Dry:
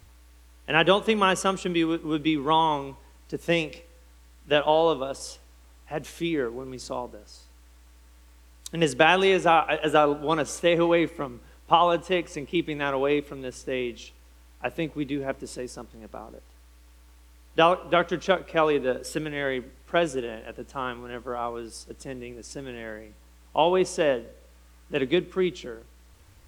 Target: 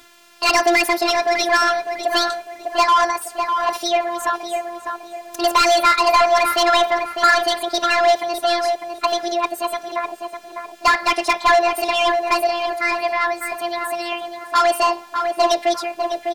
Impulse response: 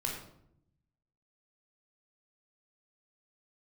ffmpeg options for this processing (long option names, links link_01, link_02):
-filter_complex "[0:a]asetrate=71442,aresample=44100,afftfilt=real='hypot(re,im)*cos(PI*b)':imag='0':win_size=512:overlap=0.75,asplit=2[link_01][link_02];[link_02]highpass=frequency=720:poles=1,volume=25dB,asoftclip=type=tanh:threshold=-5.5dB[link_03];[link_01][link_03]amix=inputs=2:normalize=0,lowpass=frequency=4900:poles=1,volume=-6dB,asplit=2[link_04][link_05];[link_05]adelay=602,lowpass=frequency=2100:poles=1,volume=-5dB,asplit=2[link_06][link_07];[link_07]adelay=602,lowpass=frequency=2100:poles=1,volume=0.38,asplit=2[link_08][link_09];[link_09]adelay=602,lowpass=frequency=2100:poles=1,volume=0.38,asplit=2[link_10][link_11];[link_11]adelay=602,lowpass=frequency=2100:poles=1,volume=0.38,asplit=2[link_12][link_13];[link_13]adelay=602,lowpass=frequency=2100:poles=1,volume=0.38[link_14];[link_06][link_08][link_10][link_12][link_14]amix=inputs=5:normalize=0[link_15];[link_04][link_15]amix=inputs=2:normalize=0"